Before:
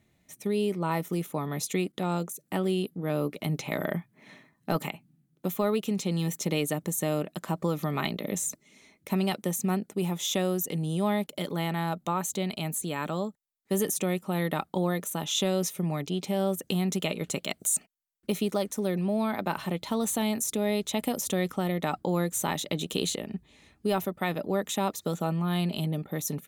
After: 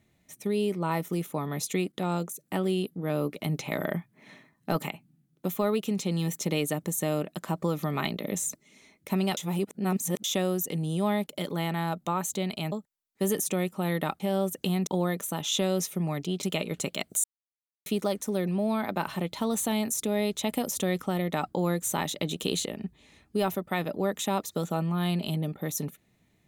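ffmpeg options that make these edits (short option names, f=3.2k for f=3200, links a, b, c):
-filter_complex "[0:a]asplit=9[a][b][c][d][e][f][g][h][i];[a]atrim=end=9.372[j];[b]atrim=start=9.368:end=10.242,asetpts=PTS-STARTPTS,areverse[k];[c]atrim=start=10.238:end=12.722[l];[d]atrim=start=13.218:end=14.702[m];[e]atrim=start=16.258:end=16.932[n];[f]atrim=start=14.698:end=16.262[o];[g]atrim=start=16.928:end=17.74,asetpts=PTS-STARTPTS,afade=t=out:st=0.808:d=0.004:c=hsin[p];[h]atrim=start=17.74:end=18.36,asetpts=PTS-STARTPTS,volume=0[q];[i]atrim=start=18.36,asetpts=PTS-STARTPTS,afade=t=in:d=0.004:c=hsin[r];[j][k]acrossfade=d=0.004:c1=hsin:c2=hsin[s];[s][l]acrossfade=d=0.004:c1=hsin:c2=hsin[t];[t][m]acrossfade=d=0.004:c1=hsin:c2=hsin[u];[u][n]acrossfade=d=0.004:c1=hsin:c2=hsin[v];[v][o]acrossfade=d=0.004:c1=hsin:c2=hsin[w];[p][q][r]concat=n=3:v=0:a=1[x];[w][x]acrossfade=d=0.004:c1=hsin:c2=hsin"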